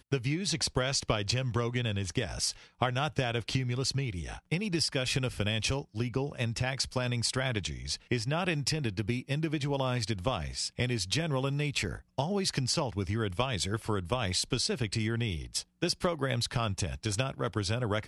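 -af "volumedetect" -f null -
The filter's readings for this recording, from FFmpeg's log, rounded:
mean_volume: -31.7 dB
max_volume: -12.3 dB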